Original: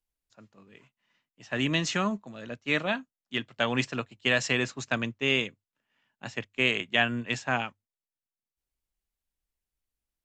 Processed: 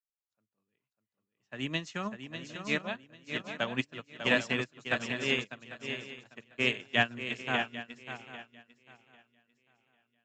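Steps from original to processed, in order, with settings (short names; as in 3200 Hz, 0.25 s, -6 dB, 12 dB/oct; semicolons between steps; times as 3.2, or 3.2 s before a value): on a send: swung echo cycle 0.797 s, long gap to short 3:1, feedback 51%, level -4 dB; on the sum: upward expander 2.5:1, over -40 dBFS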